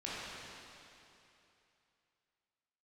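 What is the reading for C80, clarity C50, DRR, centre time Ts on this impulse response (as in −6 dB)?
−3.0 dB, −5.5 dB, −9.0 dB, 200 ms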